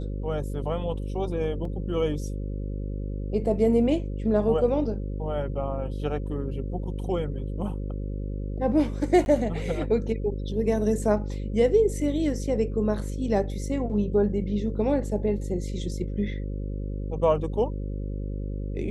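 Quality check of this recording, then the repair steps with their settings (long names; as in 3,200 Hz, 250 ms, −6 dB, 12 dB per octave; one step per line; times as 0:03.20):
mains buzz 50 Hz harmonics 11 −31 dBFS
0:01.65: drop-out 2.7 ms
0:09.25–0:09.26: drop-out 11 ms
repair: hum removal 50 Hz, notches 11
repair the gap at 0:01.65, 2.7 ms
repair the gap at 0:09.25, 11 ms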